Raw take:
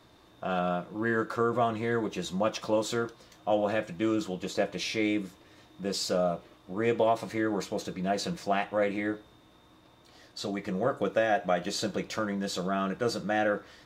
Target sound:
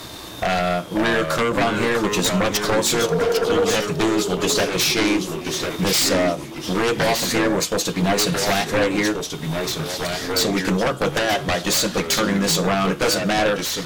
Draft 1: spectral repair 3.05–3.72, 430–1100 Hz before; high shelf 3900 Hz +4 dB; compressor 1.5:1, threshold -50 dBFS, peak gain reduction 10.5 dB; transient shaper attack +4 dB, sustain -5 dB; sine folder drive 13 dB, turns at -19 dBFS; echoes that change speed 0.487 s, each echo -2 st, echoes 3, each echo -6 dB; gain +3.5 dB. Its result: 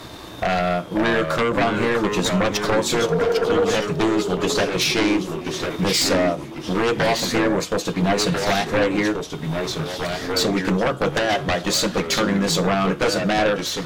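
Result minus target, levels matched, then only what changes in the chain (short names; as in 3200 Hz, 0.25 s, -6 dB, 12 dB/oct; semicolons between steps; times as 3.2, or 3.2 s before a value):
8000 Hz band -4.0 dB
change: high shelf 3900 Hz +13.5 dB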